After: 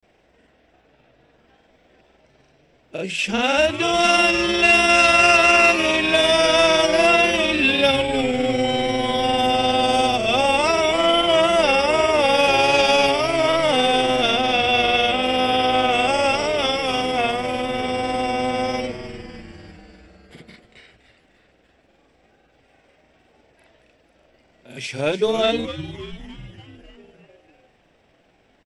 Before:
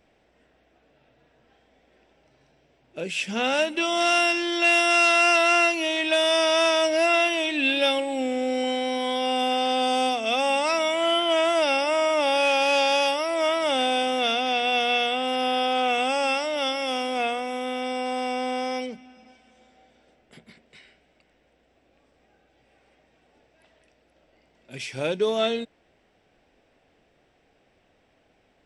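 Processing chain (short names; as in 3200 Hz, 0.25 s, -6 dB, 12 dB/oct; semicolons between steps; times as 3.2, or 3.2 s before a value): frequency-shifting echo 0.296 s, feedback 61%, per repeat -140 Hz, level -11.5 dB; grains 0.1 s, spray 33 ms, pitch spread up and down by 0 st; gain +6 dB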